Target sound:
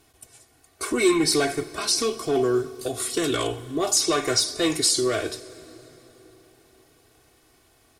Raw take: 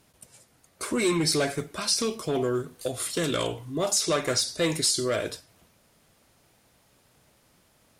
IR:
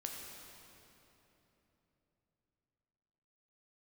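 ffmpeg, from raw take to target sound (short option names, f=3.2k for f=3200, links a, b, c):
-filter_complex "[0:a]aecho=1:1:2.7:0.74,asplit=2[a][b];[1:a]atrim=start_sample=2205,asetrate=32193,aresample=44100[c];[b][c]afir=irnorm=-1:irlink=0,volume=-14dB[d];[a][d]amix=inputs=2:normalize=0"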